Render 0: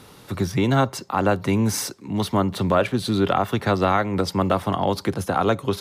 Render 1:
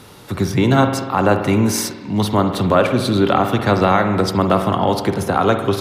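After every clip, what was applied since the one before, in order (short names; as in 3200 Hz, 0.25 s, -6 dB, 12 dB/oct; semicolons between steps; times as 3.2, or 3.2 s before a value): spring tank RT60 1.3 s, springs 48 ms, chirp 30 ms, DRR 6.5 dB; gain +4.5 dB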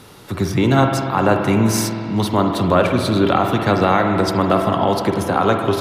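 spring tank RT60 3.1 s, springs 45 ms, chirp 35 ms, DRR 6 dB; gain -1 dB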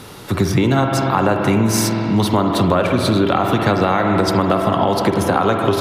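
compressor, threshold -18 dBFS, peak gain reduction 9 dB; gain +6 dB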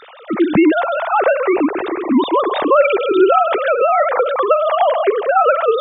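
sine-wave speech; gain +1.5 dB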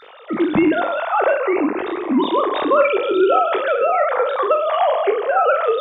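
spectral trails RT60 0.48 s; gain -4.5 dB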